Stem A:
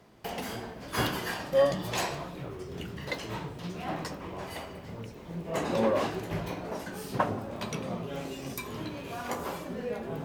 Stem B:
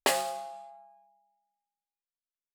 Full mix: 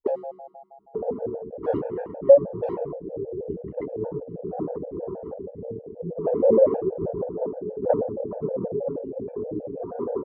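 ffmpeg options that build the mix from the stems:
ffmpeg -i stem1.wav -i stem2.wav -filter_complex "[0:a]afwtdn=0.0141,lowshelf=frequency=350:gain=-9,adelay=700,volume=-0.5dB[link_01];[1:a]volume=0.5dB[link_02];[link_01][link_02]amix=inputs=2:normalize=0,lowpass=frequency=470:width_type=q:width=4.3,dynaudnorm=framelen=210:gausssize=5:maxgain=10.5dB,afftfilt=real='re*gt(sin(2*PI*6.3*pts/sr)*(1-2*mod(floor(b*sr/1024/460),2)),0)':imag='im*gt(sin(2*PI*6.3*pts/sr)*(1-2*mod(floor(b*sr/1024/460),2)),0)':win_size=1024:overlap=0.75" out.wav

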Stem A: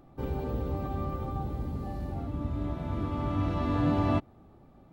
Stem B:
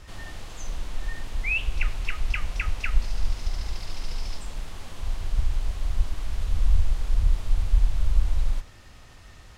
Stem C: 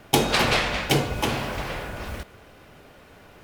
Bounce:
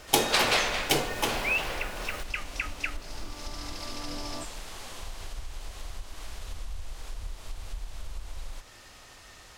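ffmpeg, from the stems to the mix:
ffmpeg -i stem1.wav -i stem2.wav -i stem3.wav -filter_complex "[0:a]adelay=250,volume=-10.5dB[link_01];[1:a]acompressor=threshold=-26dB:ratio=3,volume=2dB[link_02];[2:a]volume=-3dB[link_03];[link_01][link_02][link_03]amix=inputs=3:normalize=0,bass=frequency=250:gain=-11,treble=frequency=4000:gain=4" out.wav

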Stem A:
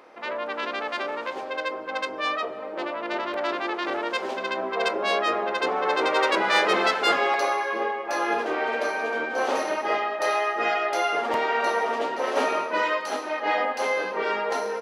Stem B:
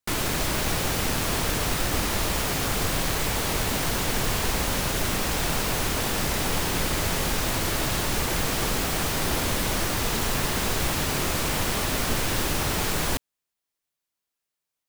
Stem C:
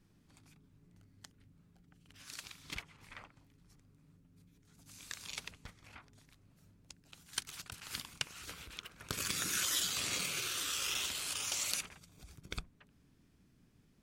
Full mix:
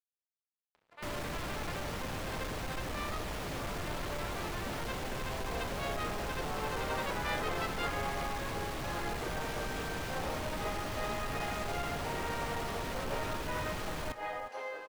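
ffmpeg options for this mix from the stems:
ffmpeg -i stem1.wav -i stem2.wav -i stem3.wav -filter_complex "[0:a]highpass=360,acompressor=mode=upward:threshold=-44dB:ratio=2.5,adelay=750,volume=-13.5dB[link_01];[1:a]asoftclip=type=tanh:threshold=-29dB,adelay=950,volume=-4.5dB,asplit=2[link_02][link_03];[link_03]volume=-16dB[link_04];[2:a]volume=-14dB[link_05];[link_04]aecho=0:1:361:1[link_06];[link_01][link_02][link_05][link_06]amix=inputs=4:normalize=0,highshelf=frequency=4800:gain=-12,aeval=exprs='sgn(val(0))*max(abs(val(0))-0.00112,0)':channel_layout=same" out.wav

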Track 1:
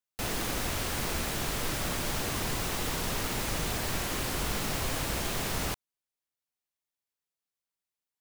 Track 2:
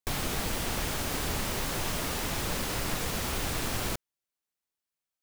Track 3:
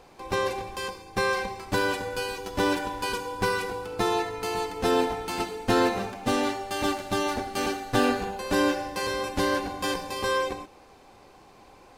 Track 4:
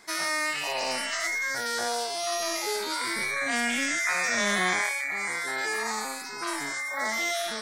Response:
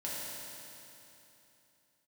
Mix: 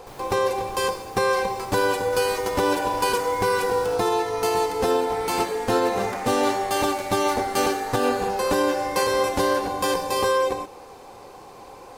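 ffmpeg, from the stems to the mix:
-filter_complex "[0:a]alimiter=level_in=4dB:limit=-24dB:level=0:latency=1,volume=-4dB,adelay=2000,volume=-13dB[link_01];[1:a]volume=-16dB[link_02];[2:a]highshelf=frequency=5100:gain=10,bandreject=frequency=620:width=12,volume=2.5dB[link_03];[3:a]adelay=2050,volume=-4.5dB[link_04];[link_01][link_04]amix=inputs=2:normalize=0,alimiter=level_in=8.5dB:limit=-24dB:level=0:latency=1,volume=-8.5dB,volume=0dB[link_05];[link_02][link_03][link_05]amix=inputs=3:normalize=0,equalizer=frequency=125:width_type=o:width=1:gain=4,equalizer=frequency=500:width_type=o:width=1:gain=9,equalizer=frequency=1000:width_type=o:width=1:gain=6,alimiter=limit=-11.5dB:level=0:latency=1:release=308"

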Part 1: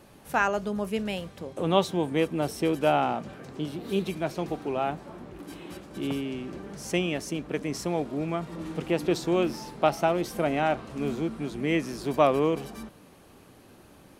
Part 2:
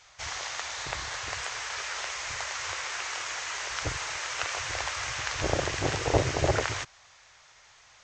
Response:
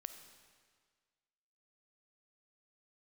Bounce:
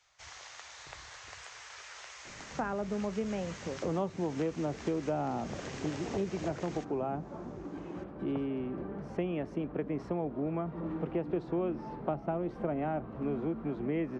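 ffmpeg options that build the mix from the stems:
-filter_complex "[0:a]lowpass=1300,adelay=2250,volume=0.5dB[link_01];[1:a]volume=-13.5dB[link_02];[link_01][link_02]amix=inputs=2:normalize=0,acrossover=split=93|340[link_03][link_04][link_05];[link_03]acompressor=threshold=-52dB:ratio=4[link_06];[link_04]acompressor=threshold=-36dB:ratio=4[link_07];[link_05]acompressor=threshold=-35dB:ratio=4[link_08];[link_06][link_07][link_08]amix=inputs=3:normalize=0"

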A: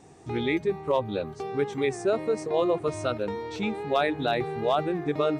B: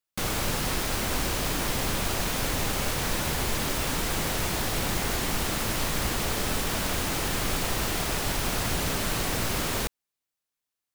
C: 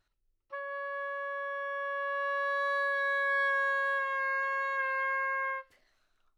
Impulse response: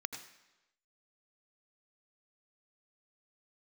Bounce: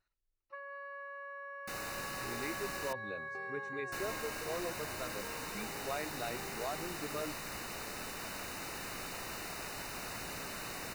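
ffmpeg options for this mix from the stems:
-filter_complex "[0:a]adelay=1950,volume=-16.5dB[link_01];[1:a]lowshelf=frequency=110:gain=-11.5,adelay=1500,volume=-14.5dB,asplit=3[link_02][link_03][link_04];[link_02]atrim=end=2.93,asetpts=PTS-STARTPTS,afade=type=out:start_time=2.926:duration=0.004:curve=hsin[link_05];[link_03]atrim=start=2.93:end=3.92,asetpts=PTS-STARTPTS,volume=0[link_06];[link_04]atrim=start=3.92,asetpts=PTS-STARTPTS,afade=type=in:duration=0.004:curve=hsin[link_07];[link_05][link_06][link_07]concat=n=3:v=0:a=1[link_08];[2:a]acompressor=threshold=-36dB:ratio=6,volume=-8.5dB,afade=type=out:start_time=3.96:duration=0.47:silence=0.354813[link_09];[link_01][link_08][link_09]amix=inputs=3:normalize=0,asuperstop=centerf=3300:order=12:qfactor=6.3,equalizer=frequency=1700:width_type=o:width=2.3:gain=3.5"

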